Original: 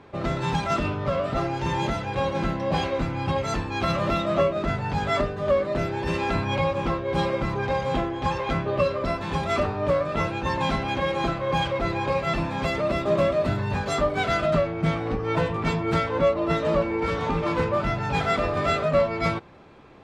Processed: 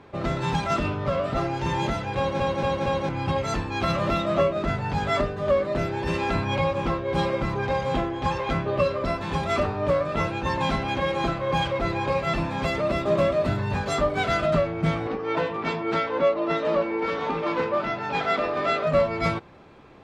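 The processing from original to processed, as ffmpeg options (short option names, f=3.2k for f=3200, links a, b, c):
-filter_complex "[0:a]asettb=1/sr,asplit=3[a][b][c];[a]atrim=end=15.074[d];[b]atrim=start=15.07:end=18.87,asetpts=PTS-STARTPTS,afade=t=in:d=0.004:c=qsin,afade=t=out:st=3.796:d=0.004:c=qsin,acrossover=split=200 6200:gain=0.112 1 0.0794[e][f][g];[e][f][g]amix=inputs=3:normalize=0[h];[c]atrim=start=18.866[i];[d][h]acrossfade=d=0.004:c1=hsin:c2=qsin[j];[j][i]acrossfade=d=0.004:c1=qsin:c2=hsin,asplit=5[k][l][m][n][o];[k]atrim=end=2.402[p];[l]atrim=start=2.168:end=2.402[q];[m]atrim=start=2.168:end=2.402[r];[n]atrim=start=2.168:end=2.402[s];[o]atrim=start=3.088[t];[p][q]acrossfade=d=0.004:c1=hsin:c2=hsin[u];[u][r]acrossfade=d=0.004:c1=hsin:c2=hsin[v];[v][s]acrossfade=d=0.004:c1=hsin:c2=hsin[w];[w][t]acrossfade=d=0.004:c1=hsin:c2=hsin"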